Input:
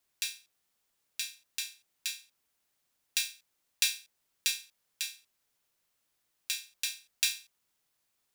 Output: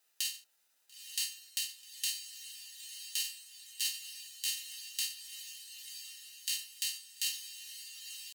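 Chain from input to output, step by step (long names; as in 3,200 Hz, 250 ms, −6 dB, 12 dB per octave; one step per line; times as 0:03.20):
high-pass filter 670 Hz 6 dB per octave
downward compressor 3 to 1, threshold −32 dBFS, peak gain reduction 8 dB
brickwall limiter −18.5 dBFS, peak gain reduction 10.5 dB
pitch shifter +2.5 semitones
notch comb filter 1,100 Hz
feedback delay with all-pass diffusion 936 ms, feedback 56%, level −9 dB
level +7 dB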